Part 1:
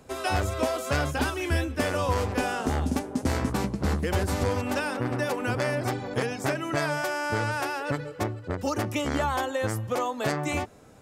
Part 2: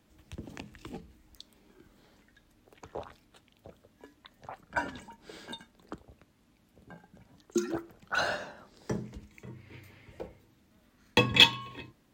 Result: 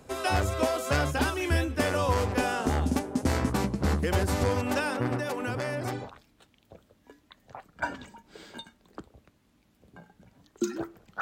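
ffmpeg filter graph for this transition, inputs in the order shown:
-filter_complex "[0:a]asettb=1/sr,asplit=3[a][b][c];[a]atrim=end=5.174[d];[b]atrim=start=5.17:end=6.11,asetpts=PTS-STARTPTS,afade=t=in:d=0.004:c=qsin,afade=t=out:st=0.936:d=0.004:c=qsin,acompressor=threshold=-29dB:ratio=2.5:attack=3.2:release=140:knee=1:detection=peak[e];[c]atrim=start=6.106[f];[d][e]acrossfade=d=0.004:c1=hsin:c2=qsin[g];[g][f]acrossfade=d=0.004:c1=qsin:c2=hsin,apad=whole_dur=11.21,atrim=end=11.21,atrim=end=6.11,asetpts=PTS-STARTPTS[h];[1:a]atrim=start=2.89:end=8.15,asetpts=PTS-STARTPTS[i];[h][i]acrossfade=d=0.16:c1=tri:c2=tri"

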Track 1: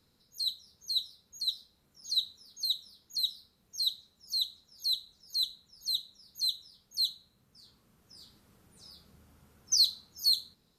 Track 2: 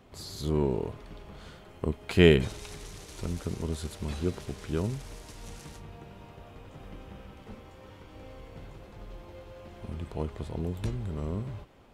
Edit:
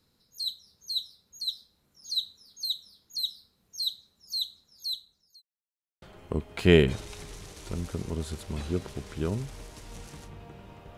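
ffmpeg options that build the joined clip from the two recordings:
-filter_complex "[0:a]apad=whole_dur=10.97,atrim=end=10.97,asplit=2[a][b];[a]atrim=end=5.42,asetpts=PTS-STARTPTS,afade=t=out:st=4.45:d=0.97:c=qsin[c];[b]atrim=start=5.42:end=6.02,asetpts=PTS-STARTPTS,volume=0[d];[1:a]atrim=start=1.54:end=6.49,asetpts=PTS-STARTPTS,afade=t=in:d=0.004:c=hsin[e];[c][d][e]concat=n=3:v=0:a=1"

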